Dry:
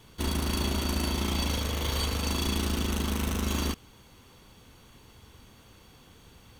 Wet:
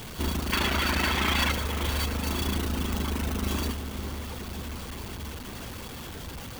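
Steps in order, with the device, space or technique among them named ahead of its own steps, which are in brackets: reverb removal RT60 1.5 s; early CD player with a faulty converter (jump at every zero crossing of -35 dBFS; sampling jitter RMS 0.03 ms); 0.52–1.52 s: peaking EQ 1.8 kHz +14 dB 2.1 oct; filtered feedback delay 524 ms, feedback 72%, low-pass 2 kHz, level -9 dB

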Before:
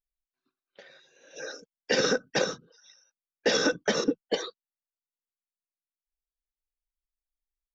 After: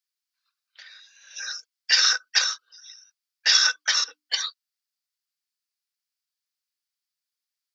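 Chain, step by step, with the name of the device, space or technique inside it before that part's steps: headphones lying on a table (high-pass 1.2 kHz 24 dB/octave; peaking EQ 4.8 kHz +9.5 dB 0.55 oct); hum notches 50/100/150/200/250/300 Hz; trim +6 dB

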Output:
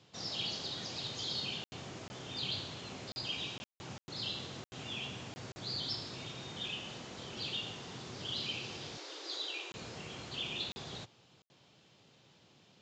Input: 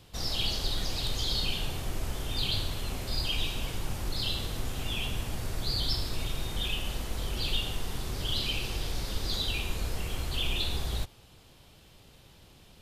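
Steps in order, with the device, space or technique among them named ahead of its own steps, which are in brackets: call with lost packets (high-pass 120 Hz 24 dB/octave; resampled via 16 kHz; lost packets bursts); 8.97–9.71 s: Chebyshev high-pass 290 Hz, order 8; trim -6 dB

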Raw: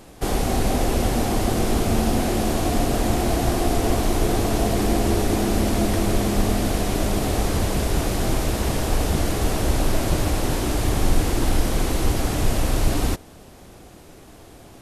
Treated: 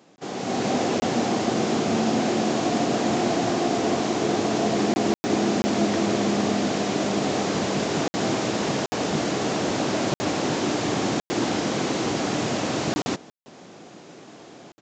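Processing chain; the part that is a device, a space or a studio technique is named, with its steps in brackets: call with lost packets (high-pass 150 Hz 24 dB/octave; resampled via 16 kHz; level rider gain up to 11 dB; lost packets bursts); trim -8.5 dB

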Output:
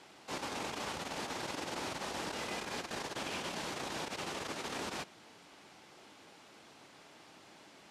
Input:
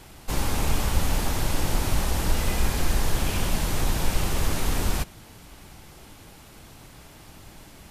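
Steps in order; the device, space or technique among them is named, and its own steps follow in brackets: public-address speaker with an overloaded transformer (transformer saturation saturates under 47 Hz; band-pass 290–6100 Hz); trim -6 dB

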